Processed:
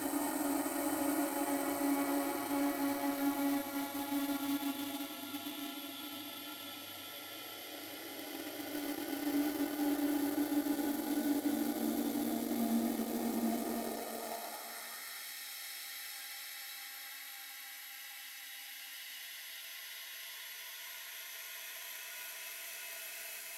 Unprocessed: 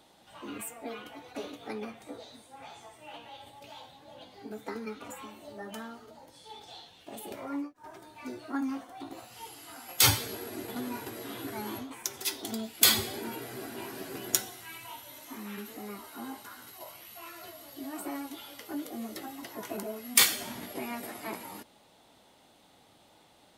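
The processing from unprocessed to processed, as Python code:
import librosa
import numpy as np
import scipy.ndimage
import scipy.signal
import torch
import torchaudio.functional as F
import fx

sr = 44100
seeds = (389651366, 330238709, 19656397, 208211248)

p1 = x + fx.echo_single(x, sr, ms=1105, db=-7.5, dry=0)
p2 = fx.dmg_buzz(p1, sr, base_hz=100.0, harmonics=39, level_db=-60.0, tilt_db=-4, odd_only=False)
p3 = fx.noise_reduce_blind(p2, sr, reduce_db=10)
p4 = fx.paulstretch(p3, sr, seeds[0], factor=13.0, window_s=0.5, from_s=17.96)
p5 = fx.filter_sweep_highpass(p4, sr, from_hz=100.0, to_hz=2200.0, start_s=12.69, end_s=15.37, q=1.3)
p6 = fx.quant_dither(p5, sr, seeds[1], bits=6, dither='none')
y = p5 + (p6 * librosa.db_to_amplitude(-11.0))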